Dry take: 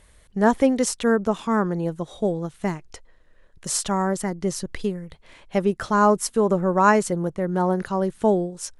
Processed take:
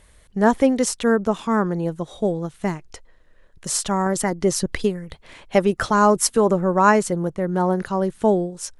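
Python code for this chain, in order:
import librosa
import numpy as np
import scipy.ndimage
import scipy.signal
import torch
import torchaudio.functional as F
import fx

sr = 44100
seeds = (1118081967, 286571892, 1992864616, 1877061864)

y = fx.hpss(x, sr, part='percussive', gain_db=6, at=(4.06, 6.51))
y = y * librosa.db_to_amplitude(1.5)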